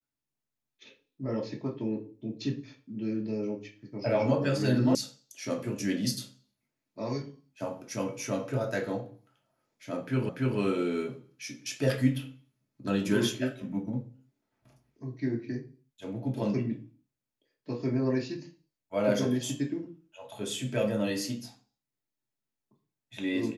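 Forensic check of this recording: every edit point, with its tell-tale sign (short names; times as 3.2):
4.95 sound cut off
10.29 repeat of the last 0.29 s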